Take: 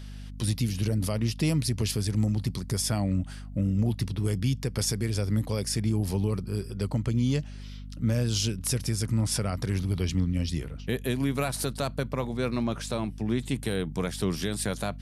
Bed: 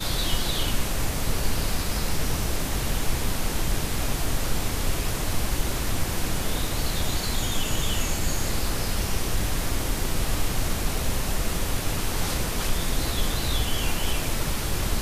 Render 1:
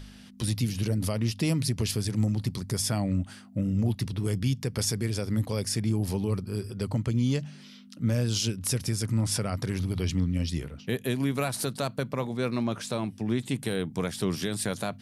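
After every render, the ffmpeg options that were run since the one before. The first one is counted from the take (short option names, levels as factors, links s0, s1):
-af "bandreject=f=50:t=h:w=4,bandreject=f=100:t=h:w=4,bandreject=f=150:t=h:w=4"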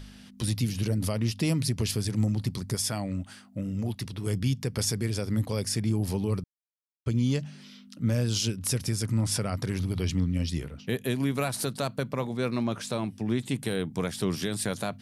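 -filter_complex "[0:a]asettb=1/sr,asplit=3[s0][s1][s2];[s0]atrim=end=2.754[s3];[s1]atrim=start=2.75:end=4.27,asetpts=PTS-STARTPTS,afade=t=in:d=0.004:c=qsin,afade=t=out:st=1.516:d=0.004:c=qsin,lowshelf=f=390:g=-6[s4];[s2]atrim=start=4.266[s5];[s3][s4]acrossfade=d=0.004:c1=hsin:c2=qsin[s6];[s6][s5]acrossfade=d=0.004:c1=qsin:c2=hsin,asplit=3[s7][s8][s9];[s7]atrim=end=6.44,asetpts=PTS-STARTPTS,afade=t=out:st=6.436:d=0.004:c=hsin[s10];[s8]atrim=start=6.44:end=7.06,asetpts=PTS-STARTPTS,volume=0[s11];[s9]atrim=start=7.06,asetpts=PTS-STARTPTS,afade=t=in:d=0.004:c=hsin[s12];[s10][s11][s12]concat=n=3:v=0:a=1"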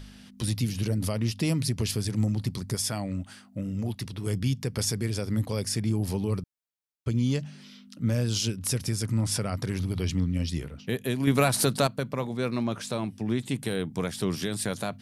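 -filter_complex "[0:a]asettb=1/sr,asplit=3[s0][s1][s2];[s0]atrim=end=11.274[s3];[s1]atrim=start=11.27:end=11.87,asetpts=PTS-STARTPTS,afade=t=in:d=0.004:c=qsin,afade=t=out:st=0.596:d=0.004:c=qsin,acontrast=68[s4];[s2]atrim=start=11.866[s5];[s3][s4]acrossfade=d=0.004:c1=hsin:c2=qsin[s6];[s6][s5]acrossfade=d=0.004:c1=qsin:c2=hsin"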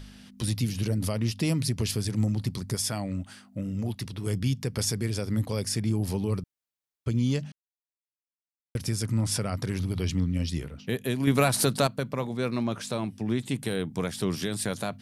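-filter_complex "[0:a]asplit=3[s0][s1][s2];[s0]atrim=end=7.52,asetpts=PTS-STARTPTS,afade=t=out:st=7.516:d=0.004:c=hsin[s3];[s1]atrim=start=7.52:end=8.75,asetpts=PTS-STARTPTS,volume=0[s4];[s2]atrim=start=8.75,asetpts=PTS-STARTPTS,afade=t=in:d=0.004:c=hsin[s5];[s3][s4][s5]concat=n=3:v=0:a=1"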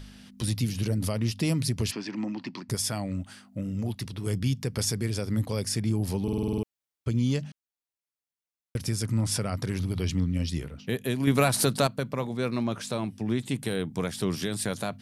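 -filter_complex "[0:a]asplit=3[s0][s1][s2];[s0]afade=t=out:st=1.9:d=0.02[s3];[s1]highpass=f=220:w=0.5412,highpass=f=220:w=1.3066,equalizer=f=310:t=q:w=4:g=5,equalizer=f=460:t=q:w=4:g=-9,equalizer=f=960:t=q:w=4:g=9,equalizer=f=1800:t=q:w=4:g=5,equalizer=f=2600:t=q:w=4:g=7,equalizer=f=3700:t=q:w=4:g=-6,lowpass=f=5000:w=0.5412,lowpass=f=5000:w=1.3066,afade=t=in:st=1.9:d=0.02,afade=t=out:st=2.68:d=0.02[s4];[s2]afade=t=in:st=2.68:d=0.02[s5];[s3][s4][s5]amix=inputs=3:normalize=0,asplit=9[s6][s7][s8][s9][s10][s11][s12][s13][s14];[s6]atrim=end=6.282[s15];[s7]atrim=start=6.228:end=6.282[s16];[s8]atrim=start=6.228:end=6.282[s17];[s9]atrim=start=6.228:end=6.282[s18];[s10]atrim=start=6.228:end=6.282[s19];[s11]atrim=start=6.228:end=6.282[s20];[s12]atrim=start=6.228:end=6.282[s21];[s13]atrim=start=6.228:end=6.282[s22];[s14]atrim=start=6.628[s23];[s15][s16]acrossfade=d=0.004:c1=hsin:c2=hsin[s24];[s24][s17]acrossfade=d=0.004:c1=hsin:c2=hsin[s25];[s25][s18]acrossfade=d=0.004:c1=hsin:c2=hsin[s26];[s26][s19]acrossfade=d=0.004:c1=hsin:c2=hsin[s27];[s27][s20]acrossfade=d=0.004:c1=hsin:c2=hsin[s28];[s28][s21]acrossfade=d=0.004:c1=hsin:c2=hsin[s29];[s29][s22]acrossfade=d=0.004:c1=hsin:c2=hsin[s30];[s30][s23]acrossfade=d=0.004:c1=hsin:c2=hsin"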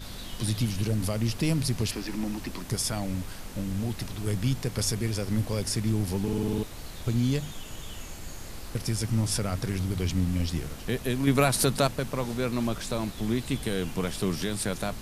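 -filter_complex "[1:a]volume=0.188[s0];[0:a][s0]amix=inputs=2:normalize=0"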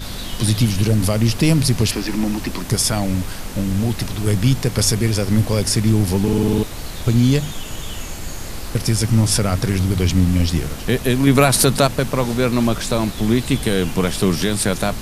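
-af "volume=3.55,alimiter=limit=0.794:level=0:latency=1"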